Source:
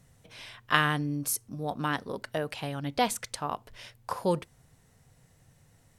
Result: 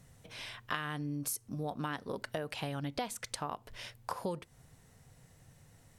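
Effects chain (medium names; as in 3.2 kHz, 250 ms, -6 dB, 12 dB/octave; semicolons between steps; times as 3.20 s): compression 6:1, threshold -35 dBFS, peak gain reduction 16.5 dB; trim +1 dB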